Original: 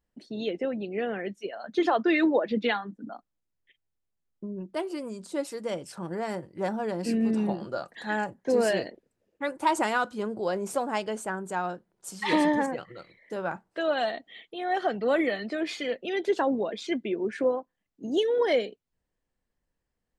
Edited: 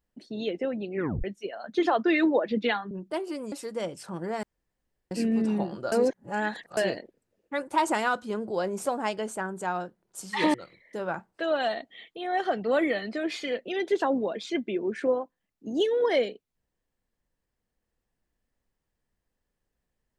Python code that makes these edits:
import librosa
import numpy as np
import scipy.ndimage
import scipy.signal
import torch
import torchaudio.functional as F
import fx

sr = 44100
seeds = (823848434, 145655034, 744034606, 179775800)

y = fx.edit(x, sr, fx.tape_stop(start_s=0.95, length_s=0.29),
    fx.cut(start_s=2.91, length_s=1.63),
    fx.cut(start_s=5.15, length_s=0.26),
    fx.room_tone_fill(start_s=6.32, length_s=0.68),
    fx.reverse_span(start_s=7.81, length_s=0.85),
    fx.cut(start_s=12.43, length_s=0.48), tone=tone)